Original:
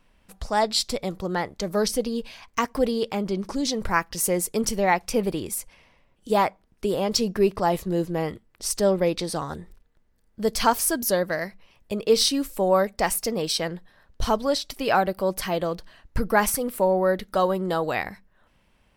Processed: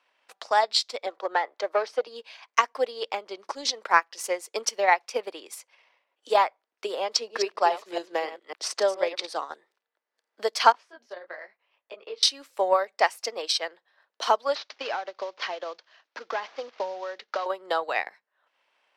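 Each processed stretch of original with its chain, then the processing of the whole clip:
0:01.06–0:02.07: high-pass filter 190 Hz + mid-hump overdrive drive 15 dB, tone 1,000 Hz, clips at −12 dBFS
0:07.15–0:09.27: delay that plays each chunk backwards 138 ms, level −8 dB + high-shelf EQ 12,000 Hz −8.5 dB + multiband upward and downward compressor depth 40%
0:10.72–0:12.23: downward compressor 3 to 1, threshold −30 dBFS + low-pass filter 3,000 Hz + micro pitch shift up and down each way 33 cents
0:14.55–0:17.46: variable-slope delta modulation 32 kbit/s + downward compressor 12 to 1, threshold −24 dBFS
whole clip: Butterworth high-pass 250 Hz 36 dB per octave; three-way crossover with the lows and the highs turned down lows −24 dB, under 520 Hz, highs −18 dB, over 6,400 Hz; transient designer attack +7 dB, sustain −6 dB; level −1 dB

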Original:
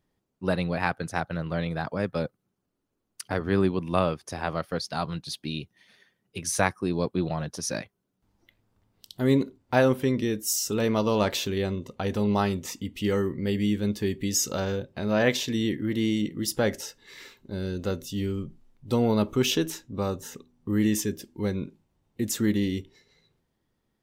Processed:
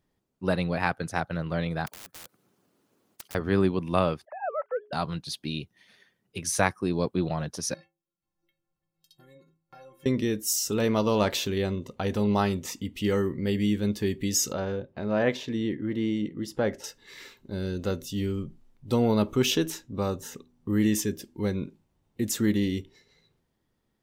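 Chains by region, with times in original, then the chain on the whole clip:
0:01.86–0:03.35: high-pass filter 160 Hz + wrap-around overflow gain 25.5 dB + every bin compressed towards the loudest bin 4 to 1
0:04.25–0:04.93: three sine waves on the formant tracks + Gaussian smoothing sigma 5 samples + mains-hum notches 60/120/180/240/300/360/420 Hz
0:07.74–0:10.06: downward compressor 4 to 1, threshold −34 dBFS + stiff-string resonator 160 Hz, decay 0.4 s, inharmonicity 0.03
0:14.53–0:16.84: low-pass filter 1,400 Hz 6 dB per octave + low-shelf EQ 220 Hz −4.5 dB
whole clip: no processing

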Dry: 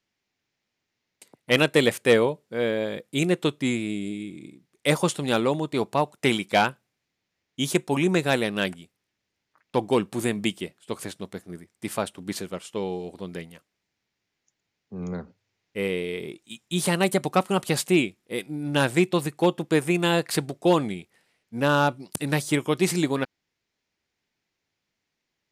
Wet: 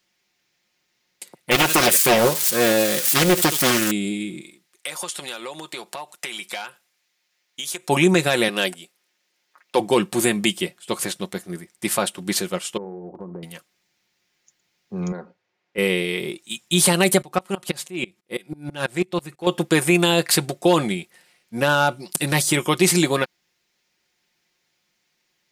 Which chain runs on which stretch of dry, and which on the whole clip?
0:01.51–0:03.91: spike at every zero crossing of −21.5 dBFS + single-tap delay 71 ms −17.5 dB + highs frequency-modulated by the lows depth 0.79 ms
0:04.41–0:07.89: high-pass filter 990 Hz 6 dB per octave + downward compressor 10 to 1, threshold −36 dBFS
0:08.48–0:09.80: high-pass filter 310 Hz + dynamic equaliser 1,500 Hz, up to −5 dB, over −40 dBFS, Q 0.71
0:12.77–0:13.43: Chebyshev low-pass filter 1,100 Hz, order 4 + downward compressor 5 to 1, threshold −37 dBFS + flutter between parallel walls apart 11.7 metres, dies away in 0.26 s
0:15.12–0:15.78: resonant band-pass 660 Hz, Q 0.58 + downward compressor 1.5 to 1, threshold −41 dBFS
0:17.22–0:19.47: high-shelf EQ 4,500 Hz −6 dB + downward compressor 2 to 1, threshold −26 dBFS + tremolo with a ramp in dB swelling 6.1 Hz, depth 25 dB
whole clip: spectral tilt +1.5 dB per octave; comb filter 5.6 ms, depth 48%; brickwall limiter −13.5 dBFS; level +7.5 dB

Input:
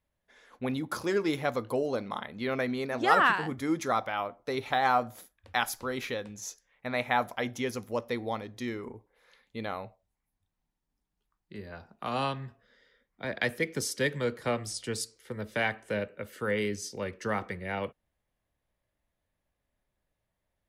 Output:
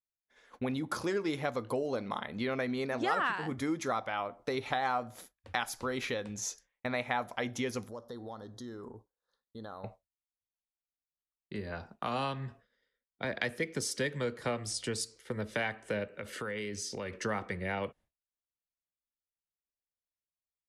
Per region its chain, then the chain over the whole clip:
0:07.88–0:09.84: Chebyshev band-stop filter 1,500–3,800 Hz + downward compressor 3 to 1, threshold −50 dBFS
0:16.13–0:17.16: parametric band 2,900 Hz +3 dB 2.8 octaves + downward compressor 4 to 1, threshold −40 dBFS
whole clip: low-pass filter 11,000 Hz 24 dB per octave; downward expander −51 dBFS; downward compressor 2.5 to 1, threshold −39 dBFS; level +5 dB

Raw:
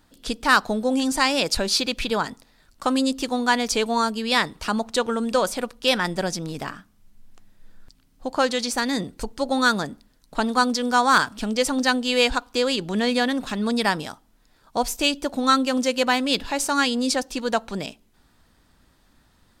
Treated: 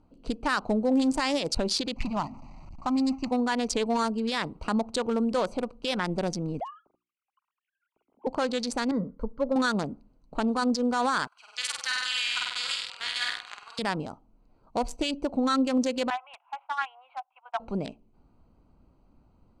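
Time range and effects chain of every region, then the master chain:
0:01.96–0:03.31: converter with a step at zero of −27 dBFS + noise gate −27 dBFS, range −8 dB + phaser with its sweep stopped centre 2,300 Hz, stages 8
0:06.60–0:08.27: three sine waves on the formant tracks + mains-hum notches 60/120/180/240/300/360 Hz
0:08.91–0:09.56: low-pass with resonance 2,400 Hz, resonance Q 1.9 + phaser with its sweep stopped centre 510 Hz, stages 8
0:11.27–0:13.79: high-pass filter 1,400 Hz 24 dB per octave + flutter between parallel walls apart 8.3 metres, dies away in 1.4 s
0:16.10–0:17.60: noise gate −27 dBFS, range −12 dB + Chebyshev band-pass filter 720–3,500 Hz, order 5 + high-frequency loss of the air 450 metres
whole clip: adaptive Wiener filter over 25 samples; low-pass filter 10,000 Hz 24 dB per octave; brickwall limiter −17 dBFS

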